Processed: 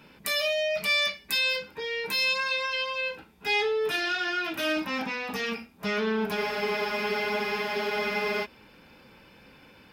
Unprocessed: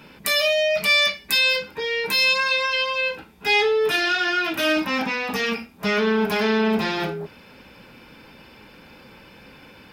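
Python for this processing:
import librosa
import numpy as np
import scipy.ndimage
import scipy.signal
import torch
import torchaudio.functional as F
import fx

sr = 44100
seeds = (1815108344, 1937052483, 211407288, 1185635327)

y = fx.spec_freeze(x, sr, seeds[0], at_s=6.38, hold_s=2.06)
y = F.gain(torch.from_numpy(y), -7.0).numpy()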